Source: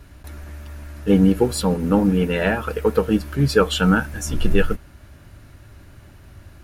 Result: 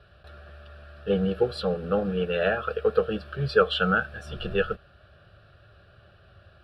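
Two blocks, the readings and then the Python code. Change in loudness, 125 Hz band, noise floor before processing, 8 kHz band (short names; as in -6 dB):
-6.5 dB, -10.5 dB, -46 dBFS, under -25 dB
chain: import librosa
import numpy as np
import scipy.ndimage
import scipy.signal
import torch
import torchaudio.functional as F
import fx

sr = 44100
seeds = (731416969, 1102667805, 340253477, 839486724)

y = fx.highpass(x, sr, hz=250.0, slope=6)
y = fx.air_absorb(y, sr, metres=140.0)
y = fx.fixed_phaser(y, sr, hz=1400.0, stages=8)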